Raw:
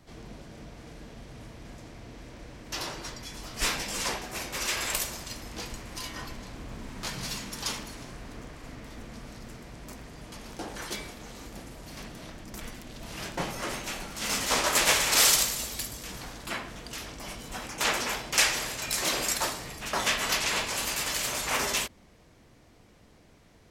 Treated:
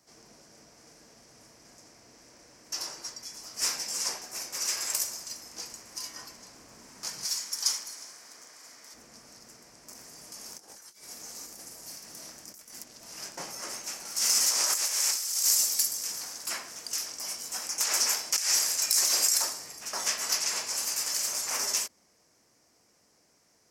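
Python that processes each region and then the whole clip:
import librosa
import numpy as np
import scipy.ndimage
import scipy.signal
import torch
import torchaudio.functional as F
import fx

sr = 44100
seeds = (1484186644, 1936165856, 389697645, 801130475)

y = fx.chain(x, sr, fx.highpass(hz=340.0, slope=6),
    fx.tilt_shelf(db=-4.5, hz=870.0),
    fx.notch(hz=2700.0, q=13.0), at=(7.25, 8.94))
y = fx.chain(y, sr, fx.high_shelf(hz=7000.0, db=9.0),
    fx.over_compress(threshold_db=-42.0, ratio=-0.5),
    fx.doubler(ms=25.0, db=-12.0), at=(9.95, 12.84))
y = fx.chain(y, sr, fx.tilt_eq(slope=1.5),
    fx.over_compress(threshold_db=-27.0, ratio=-1.0), at=(14.05, 19.42))
y = fx.highpass(y, sr, hz=470.0, slope=6)
y = fx.high_shelf_res(y, sr, hz=4400.0, db=6.5, q=3.0)
y = y * 10.0 ** (-6.5 / 20.0)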